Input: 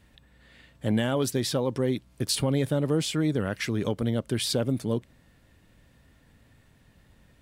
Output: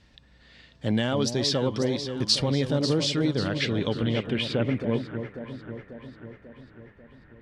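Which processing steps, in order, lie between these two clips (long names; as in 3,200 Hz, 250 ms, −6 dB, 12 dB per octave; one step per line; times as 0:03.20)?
delay that swaps between a low-pass and a high-pass 271 ms, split 880 Hz, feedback 75%, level −7.5 dB
low-pass filter sweep 5,100 Hz → 1,800 Hz, 0:03.15–0:05.20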